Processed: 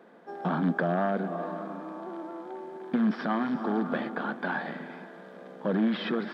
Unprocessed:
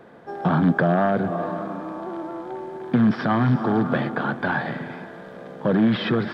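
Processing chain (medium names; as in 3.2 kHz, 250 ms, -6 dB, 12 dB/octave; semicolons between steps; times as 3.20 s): brick-wall FIR high-pass 160 Hz; trim -7 dB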